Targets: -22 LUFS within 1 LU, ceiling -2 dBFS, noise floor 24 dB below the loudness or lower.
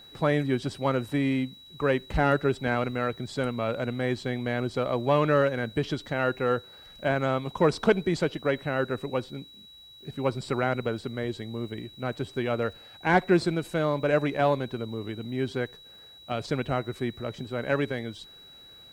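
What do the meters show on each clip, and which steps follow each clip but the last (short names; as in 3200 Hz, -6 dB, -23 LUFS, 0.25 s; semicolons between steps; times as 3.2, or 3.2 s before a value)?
steady tone 3900 Hz; tone level -48 dBFS; loudness -28.0 LUFS; peak -9.0 dBFS; loudness target -22.0 LUFS
-> notch 3900 Hz, Q 30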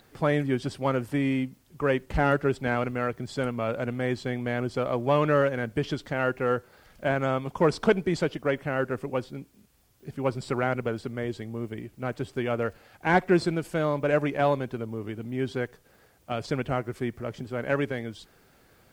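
steady tone none; loudness -28.0 LUFS; peak -9.0 dBFS; loudness target -22.0 LUFS
-> gain +6 dB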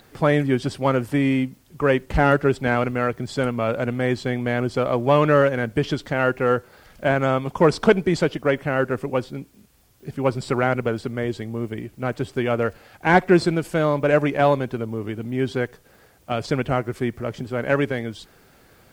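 loudness -22.0 LUFS; peak -3.0 dBFS; noise floor -54 dBFS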